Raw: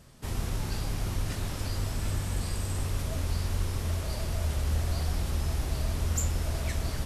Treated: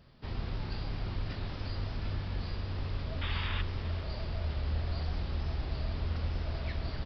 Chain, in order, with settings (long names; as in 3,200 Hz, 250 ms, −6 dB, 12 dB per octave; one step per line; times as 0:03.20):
downsampling to 11,025 Hz
sound drawn into the spectrogram noise, 0:03.21–0:03.62, 810–3,800 Hz −35 dBFS
far-end echo of a speakerphone 400 ms, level −15 dB
level −4.5 dB